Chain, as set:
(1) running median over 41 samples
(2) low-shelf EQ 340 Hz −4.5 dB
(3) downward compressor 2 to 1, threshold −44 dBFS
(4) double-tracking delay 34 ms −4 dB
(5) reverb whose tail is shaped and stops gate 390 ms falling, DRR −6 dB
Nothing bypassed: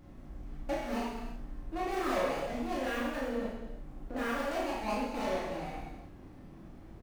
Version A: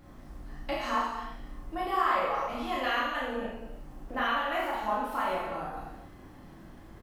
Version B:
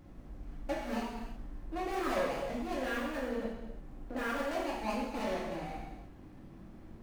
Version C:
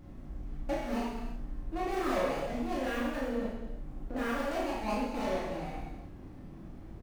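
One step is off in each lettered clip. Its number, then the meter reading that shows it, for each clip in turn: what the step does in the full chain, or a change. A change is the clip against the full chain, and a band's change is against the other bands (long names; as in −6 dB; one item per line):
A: 1, 250 Hz band −9.0 dB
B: 4, change in crest factor +2.5 dB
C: 2, 125 Hz band +3.5 dB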